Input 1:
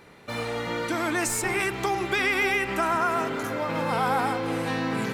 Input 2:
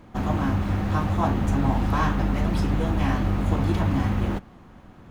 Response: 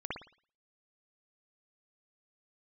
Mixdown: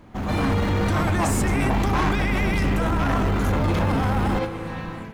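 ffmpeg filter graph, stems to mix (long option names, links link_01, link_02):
-filter_complex "[0:a]acompressor=threshold=-31dB:ratio=6,volume=-2.5dB,asplit=2[link_01][link_02];[link_02]volume=-11.5dB[link_03];[1:a]asoftclip=type=tanh:threshold=-24dB,volume=0dB,asplit=2[link_04][link_05];[link_05]apad=whole_len=226625[link_06];[link_01][link_06]sidechaingate=range=-33dB:threshold=-37dB:ratio=16:detection=peak[link_07];[2:a]atrim=start_sample=2205[link_08];[link_03][link_08]afir=irnorm=-1:irlink=0[link_09];[link_07][link_04][link_09]amix=inputs=3:normalize=0,dynaudnorm=framelen=290:gausssize=3:maxgain=12dB,alimiter=limit=-15dB:level=0:latency=1:release=37"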